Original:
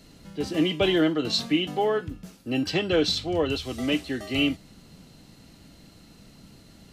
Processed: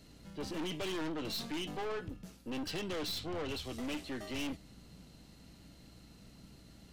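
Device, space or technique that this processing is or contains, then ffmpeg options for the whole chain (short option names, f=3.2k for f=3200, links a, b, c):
valve amplifier with mains hum: -af "aeval=exprs='(tanh(35.5*val(0)+0.45)-tanh(0.45))/35.5':c=same,aeval=exprs='val(0)+0.00158*(sin(2*PI*60*n/s)+sin(2*PI*2*60*n/s)/2+sin(2*PI*3*60*n/s)/3+sin(2*PI*4*60*n/s)/4+sin(2*PI*5*60*n/s)/5)':c=same,volume=-5dB"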